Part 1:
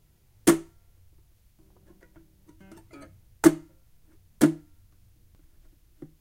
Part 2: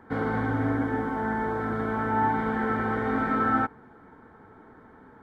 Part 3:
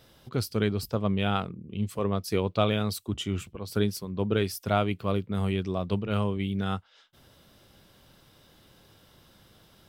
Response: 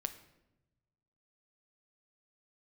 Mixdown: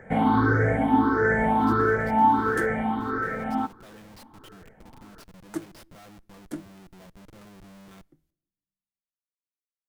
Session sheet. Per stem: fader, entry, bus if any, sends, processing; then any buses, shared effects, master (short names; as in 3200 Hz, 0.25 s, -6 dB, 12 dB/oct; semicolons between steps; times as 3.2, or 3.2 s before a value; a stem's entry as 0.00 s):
-18.0 dB, 2.10 s, send -12 dB, dry
2.44 s -0.5 dB -> 3.03 s -7.5 dB, 0.00 s, send -14 dB, moving spectral ripple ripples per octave 0.53, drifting +1.5 Hz, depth 20 dB; vocal rider 0.5 s
-19.5 dB, 1.25 s, send -17 dB, reverb removal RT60 0.67 s; comb 5.9 ms, depth 91%; Schmitt trigger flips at -32 dBFS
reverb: on, RT60 0.95 s, pre-delay 7 ms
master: dry